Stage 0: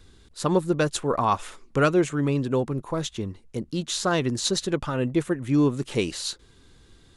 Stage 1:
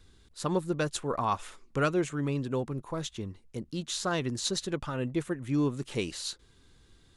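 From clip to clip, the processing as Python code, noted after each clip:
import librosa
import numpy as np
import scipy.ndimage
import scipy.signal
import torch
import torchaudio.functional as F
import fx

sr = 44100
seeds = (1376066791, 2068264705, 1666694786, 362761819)

y = fx.peak_eq(x, sr, hz=410.0, db=-2.0, octaves=2.3)
y = F.gain(torch.from_numpy(y), -5.5).numpy()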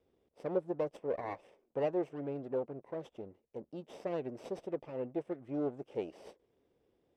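y = fx.lower_of_two(x, sr, delay_ms=0.37)
y = fx.bandpass_q(y, sr, hz=540.0, q=2.1)
y = F.gain(torch.from_numpy(y), 1.0).numpy()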